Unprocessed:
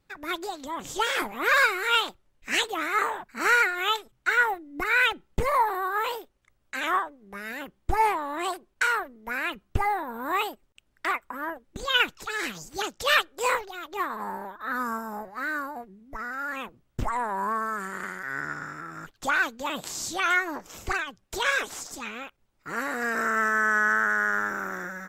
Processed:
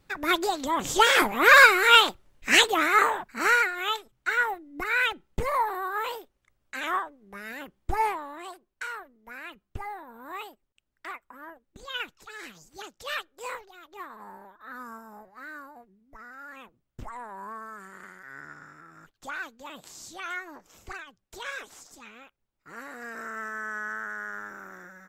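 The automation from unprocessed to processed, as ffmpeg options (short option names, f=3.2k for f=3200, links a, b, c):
-af "volume=7dB,afade=t=out:st=2.61:d=1.08:silence=0.316228,afade=t=out:st=8.01:d=0.42:silence=0.375837"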